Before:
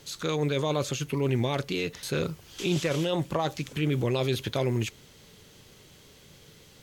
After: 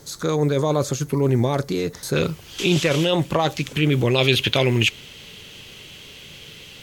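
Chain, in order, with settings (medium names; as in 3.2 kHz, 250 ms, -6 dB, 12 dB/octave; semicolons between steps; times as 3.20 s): peaking EQ 2.8 kHz -13.5 dB 0.82 oct, from 2.16 s +4 dB, from 4.18 s +13 dB; trim +7.5 dB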